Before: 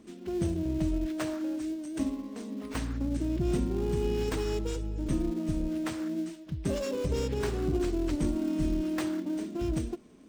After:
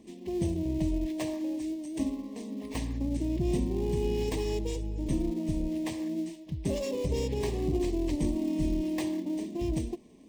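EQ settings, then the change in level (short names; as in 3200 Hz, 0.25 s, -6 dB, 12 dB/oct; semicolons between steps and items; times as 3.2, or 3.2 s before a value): Butterworth band-stop 1400 Hz, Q 1.8; 0.0 dB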